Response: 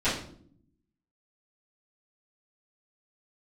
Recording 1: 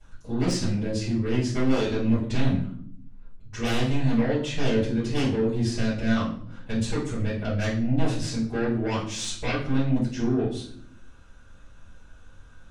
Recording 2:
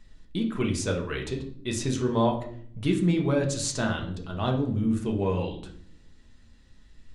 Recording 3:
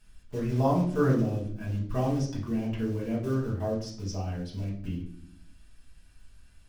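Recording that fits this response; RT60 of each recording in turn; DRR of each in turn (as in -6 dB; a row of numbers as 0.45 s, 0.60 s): 1; 0.60 s, 0.60 s, 0.60 s; -16.5 dB, 0.5 dB, -7.0 dB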